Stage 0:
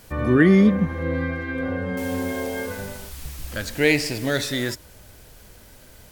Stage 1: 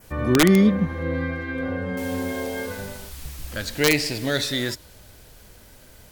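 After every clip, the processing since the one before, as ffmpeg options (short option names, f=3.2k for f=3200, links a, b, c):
-af "adynamicequalizer=threshold=0.00631:dfrequency=4000:dqfactor=2:tfrequency=4000:tqfactor=2:attack=5:release=100:ratio=0.375:range=2.5:mode=boostabove:tftype=bell,aeval=exprs='(mod(2.11*val(0)+1,2)-1)/2.11':c=same,volume=-1dB"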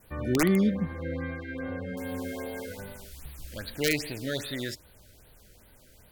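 -af "afftfilt=real='re*(1-between(b*sr/1024,880*pow(6900/880,0.5+0.5*sin(2*PI*2.5*pts/sr))/1.41,880*pow(6900/880,0.5+0.5*sin(2*PI*2.5*pts/sr))*1.41))':imag='im*(1-between(b*sr/1024,880*pow(6900/880,0.5+0.5*sin(2*PI*2.5*pts/sr))/1.41,880*pow(6900/880,0.5+0.5*sin(2*PI*2.5*pts/sr))*1.41))':win_size=1024:overlap=0.75,volume=-7.5dB"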